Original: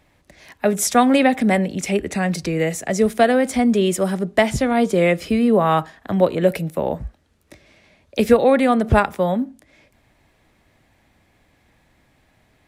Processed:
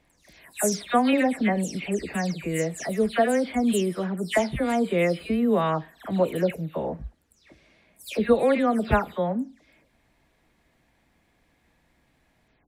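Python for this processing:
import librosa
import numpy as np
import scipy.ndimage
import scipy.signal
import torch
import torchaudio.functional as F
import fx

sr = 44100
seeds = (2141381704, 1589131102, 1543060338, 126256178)

y = fx.spec_delay(x, sr, highs='early', ms=199)
y = y * librosa.db_to_amplitude(-6.0)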